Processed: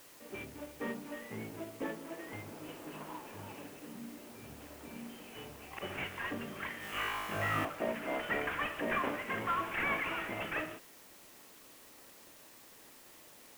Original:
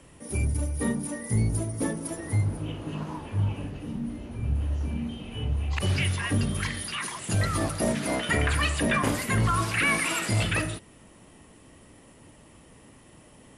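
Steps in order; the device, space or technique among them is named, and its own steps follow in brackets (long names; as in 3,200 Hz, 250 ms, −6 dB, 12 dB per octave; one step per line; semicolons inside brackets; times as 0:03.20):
army field radio (band-pass filter 350–3,200 Hz; variable-slope delta modulation 16 kbit/s; white noise bed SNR 17 dB)
0:06.78–0:07.65: flutter between parallel walls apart 3.3 metres, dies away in 1 s
level −5.5 dB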